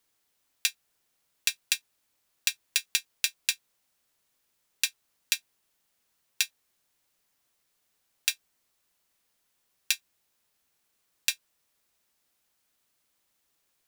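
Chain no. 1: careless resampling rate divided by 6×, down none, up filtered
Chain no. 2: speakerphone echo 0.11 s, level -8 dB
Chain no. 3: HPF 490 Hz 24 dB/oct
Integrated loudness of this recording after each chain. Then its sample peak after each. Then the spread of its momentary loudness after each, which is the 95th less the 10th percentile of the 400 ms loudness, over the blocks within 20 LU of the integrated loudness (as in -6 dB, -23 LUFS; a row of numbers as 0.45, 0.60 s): -31.5, -30.5, -30.5 LUFS; -1.0, -1.0, -2.0 dBFS; 3, 16, 3 LU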